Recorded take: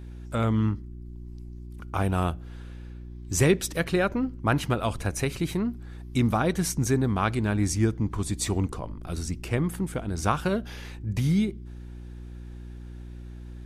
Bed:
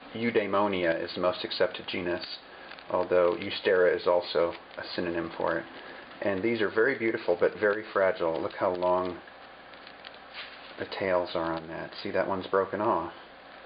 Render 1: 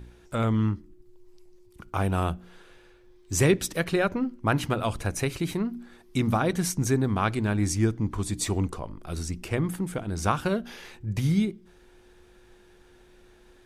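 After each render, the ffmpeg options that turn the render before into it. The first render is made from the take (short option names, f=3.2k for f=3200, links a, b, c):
-af "bandreject=f=60:t=h:w=4,bandreject=f=120:t=h:w=4,bandreject=f=180:t=h:w=4,bandreject=f=240:t=h:w=4,bandreject=f=300:t=h:w=4"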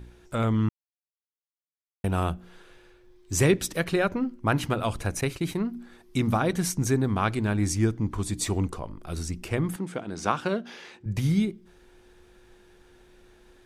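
-filter_complex "[0:a]asettb=1/sr,asplit=3[a][b][c];[a]atrim=end=5.214[d];[b]atrim=start=5.21:end=5.74,asetpts=PTS-STARTPTS,afade=t=in:d=0.004:c=qsin,afade=t=out:st=0.526:d=0.004:c=qsin,agate=range=-33dB:threshold=-34dB:ratio=3:release=100:detection=peak[e];[c]atrim=start=5.736[f];[d][e]acrossfade=d=0.004:c1=hsin:c2=qsin[g];[g][f]acrossfade=d=0.004:c1=qsin:c2=hsin,asettb=1/sr,asplit=3[h][i][j];[h]atrim=end=9.764[k];[i]atrim=start=9.76:end=11.06,asetpts=PTS-STARTPTS,afade=t=in:d=0.004:c=qsin,afade=t=out:st=1.296:d=0.004:c=qsin,highpass=190,lowpass=6.8k[l];[j]atrim=start=11.056[m];[k][l]acrossfade=d=0.004:c1=hsin:c2=qsin[n];[n][m]acrossfade=d=0.004:c1=qsin:c2=hsin,asplit=3[o][p][q];[o]atrim=end=0.69,asetpts=PTS-STARTPTS,afade=t=out:st=0.686:d=0.004:c=hsin[r];[p]atrim=start=0.69:end=2.04,asetpts=PTS-STARTPTS,volume=0[s];[q]atrim=start=2.04,asetpts=PTS-STARTPTS,afade=t=in:d=0.004:c=hsin[t];[r][s][t]concat=n=3:v=0:a=1"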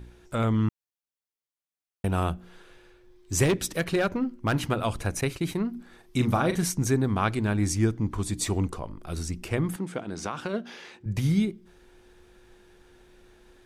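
-filter_complex "[0:a]asettb=1/sr,asplit=3[a][b][c];[a]atrim=end=3.444[d];[b]atrim=start=3.44:end=4.56,asetpts=PTS-STARTPTS,afade=t=in:d=0.004:c=qsin,afade=t=out:st=1.116:d=0.004:c=qsin,asoftclip=type=hard:threshold=-19dB[e];[c]atrim=start=4.556[f];[d][e]acrossfade=d=0.004:c1=hsin:c2=qsin[g];[g][f]acrossfade=d=0.004:c1=qsin:c2=hsin,asettb=1/sr,asplit=3[h][i][j];[h]atrim=end=5.764[k];[i]atrim=start=5.76:end=6.64,asetpts=PTS-STARTPTS,afade=t=in:d=0.004:c=qsin,afade=t=out:st=0.876:d=0.004:c=qsin,asplit=2[l][m];[m]adelay=40,volume=-8dB[n];[l][n]amix=inputs=2:normalize=0,atrim=end_sample=38808[o];[j]atrim=start=6.636[p];[k][o]acrossfade=d=0.004:c1=hsin:c2=qsin[q];[q][p]acrossfade=d=0.004:c1=qsin:c2=hsin,asplit=3[r][s][t];[r]afade=t=out:st=10.08:d=0.02[u];[s]acompressor=threshold=-26dB:ratio=6:attack=3.2:release=140:knee=1:detection=peak,afade=t=in:st=10.08:d=0.02,afade=t=out:st=10.53:d=0.02[v];[t]afade=t=in:st=10.53:d=0.02[w];[u][v][w]amix=inputs=3:normalize=0"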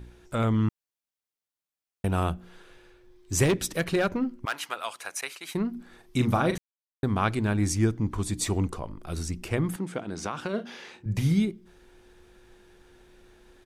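-filter_complex "[0:a]asettb=1/sr,asplit=3[a][b][c];[a]atrim=end=4.454[d];[b]atrim=start=4.45:end=5.55,asetpts=PTS-STARTPTS,afade=t=in:d=0.004:c=qsin,afade=t=out:st=1.096:d=0.004:c=qsin,highpass=980[e];[c]atrim=start=5.546[f];[d][e]acrossfade=d=0.004:c1=hsin:c2=qsin[g];[g][f]acrossfade=d=0.004:c1=qsin:c2=hsin,asplit=3[h][i][j];[h]afade=t=out:st=10.57:d=0.02[k];[i]asplit=2[l][m];[m]adelay=37,volume=-9dB[n];[l][n]amix=inputs=2:normalize=0,afade=t=in:st=10.57:d=0.02,afade=t=out:st=11.32:d=0.02[o];[j]afade=t=in:st=11.32:d=0.02[p];[k][o][p]amix=inputs=3:normalize=0,asplit=3[q][r][s];[q]atrim=end=6.58,asetpts=PTS-STARTPTS,afade=t=out:st=6.576:d=0.004:c=hsin[t];[r]atrim=start=6.58:end=7.03,asetpts=PTS-STARTPTS,volume=0[u];[s]atrim=start=7.03,asetpts=PTS-STARTPTS,afade=t=in:d=0.004:c=hsin[v];[t][u][v]concat=n=3:v=0:a=1"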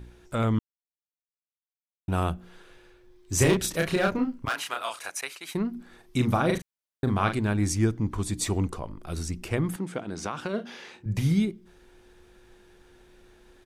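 -filter_complex "[0:a]asettb=1/sr,asplit=3[a][b][c];[a]atrim=end=3.354[d];[b]atrim=start=3.35:end=5.1,asetpts=PTS-STARTPTS,afade=t=in:d=0.004:c=qsin,afade=t=out:st=1.746:d=0.004:c=qsin,asplit=2[e][f];[f]adelay=32,volume=-2.5dB[g];[e][g]amix=inputs=2:normalize=0,atrim=end_sample=77175[h];[c]atrim=start=5.096[i];[d][h]acrossfade=d=0.004:c1=hsin:c2=qsin[j];[j][i]acrossfade=d=0.004:c1=qsin:c2=hsin,asettb=1/sr,asplit=3[k][l][m];[k]atrim=end=6.454[n];[l]atrim=start=6.45:end=7.38,asetpts=PTS-STARTPTS,afade=t=in:d=0.004:c=qsin,afade=t=out:st=0.926:d=0.004:c=qsin,asplit=2[o][p];[p]adelay=40,volume=-7dB[q];[o][q]amix=inputs=2:normalize=0,atrim=end_sample=41013[r];[m]atrim=start=7.376[s];[n][r]acrossfade=d=0.004:c1=hsin:c2=qsin[t];[t][s]acrossfade=d=0.004:c1=qsin:c2=hsin,asplit=3[u][v][w];[u]atrim=end=0.59,asetpts=PTS-STARTPTS,afade=t=out:st=0.586:d=0.004:c=hsin[x];[v]atrim=start=0.59:end=2.08,asetpts=PTS-STARTPTS,volume=0[y];[w]atrim=start=2.08,asetpts=PTS-STARTPTS,afade=t=in:d=0.004:c=hsin[z];[x][y][z]concat=n=3:v=0:a=1"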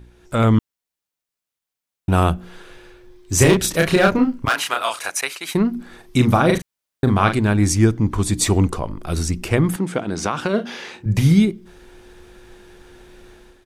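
-af "dynaudnorm=f=120:g=5:m=10.5dB"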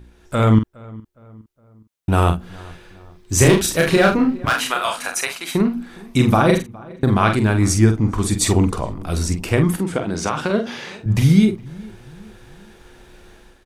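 -filter_complex "[0:a]asplit=2[a][b];[b]adelay=46,volume=-7.5dB[c];[a][c]amix=inputs=2:normalize=0,asplit=2[d][e];[e]adelay=413,lowpass=f=1.7k:p=1,volume=-22dB,asplit=2[f][g];[g]adelay=413,lowpass=f=1.7k:p=1,volume=0.46,asplit=2[h][i];[i]adelay=413,lowpass=f=1.7k:p=1,volume=0.46[j];[d][f][h][j]amix=inputs=4:normalize=0"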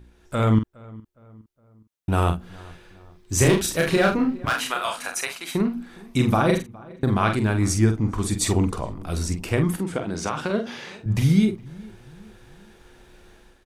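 -af "volume=-5dB"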